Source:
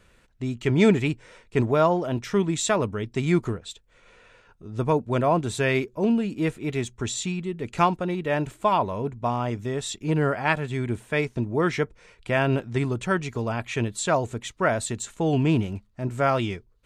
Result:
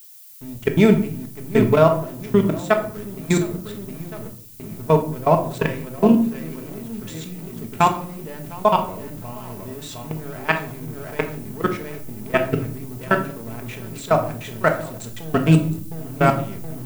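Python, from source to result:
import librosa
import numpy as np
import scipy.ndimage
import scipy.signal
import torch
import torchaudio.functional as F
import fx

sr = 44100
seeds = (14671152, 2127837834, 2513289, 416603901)

p1 = x + fx.echo_feedback(x, sr, ms=712, feedback_pct=30, wet_db=-6.5, dry=0)
p2 = fx.level_steps(p1, sr, step_db=20)
p3 = fx.backlash(p2, sr, play_db=-38.5)
p4 = fx.dmg_noise_colour(p3, sr, seeds[0], colour='violet', level_db=-51.0)
p5 = fx.room_shoebox(p4, sr, seeds[1], volume_m3=640.0, walls='furnished', distance_m=1.5)
y = p5 * librosa.db_to_amplitude(5.5)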